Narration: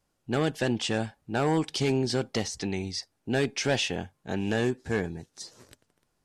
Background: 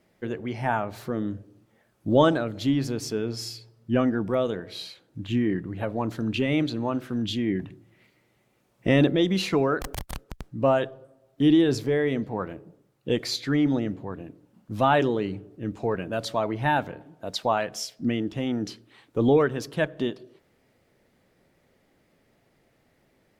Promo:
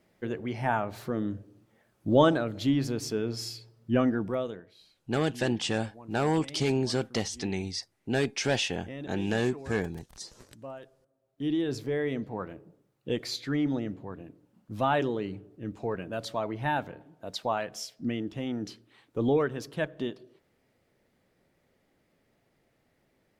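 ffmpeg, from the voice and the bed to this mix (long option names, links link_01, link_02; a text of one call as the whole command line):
ffmpeg -i stem1.wav -i stem2.wav -filter_complex "[0:a]adelay=4800,volume=-1dB[link_01];[1:a]volume=13.5dB,afade=type=out:start_time=4.1:duration=0.64:silence=0.112202,afade=type=in:start_time=11.04:duration=0.98:silence=0.16788[link_02];[link_01][link_02]amix=inputs=2:normalize=0" out.wav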